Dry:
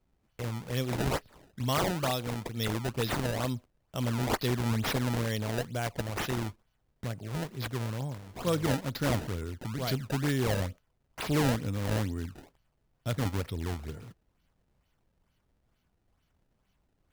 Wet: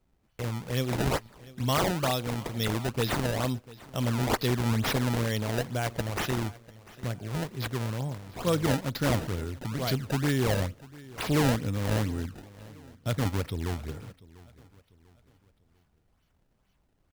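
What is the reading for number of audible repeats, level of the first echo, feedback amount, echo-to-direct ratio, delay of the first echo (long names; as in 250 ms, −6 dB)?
2, −20.5 dB, 40%, −20.0 dB, 695 ms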